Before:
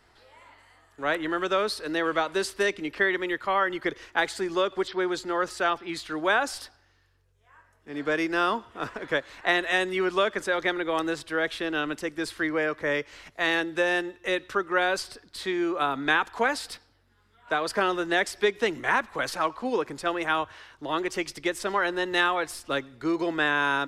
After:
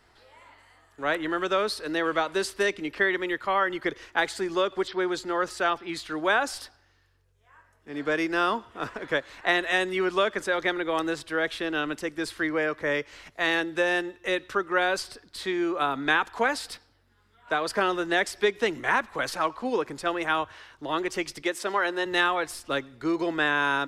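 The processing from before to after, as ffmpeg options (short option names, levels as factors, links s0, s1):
-filter_complex "[0:a]asettb=1/sr,asplit=3[s0][s1][s2];[s0]atrim=end=21.424[s3];[s1]atrim=start=21.42:end=22.06,asetpts=PTS-STARTPTS,afade=t=in:d=0.004:c=qsin,afade=t=out:st=0.636:d=0.004:c=qsin,highpass=240[s4];[s2]atrim=start=22.056[s5];[s3][s4]acrossfade=d=0.004:c1=hsin:c2=qsin[s6];[s6][s5]acrossfade=d=0.004:c1=qsin:c2=hsin"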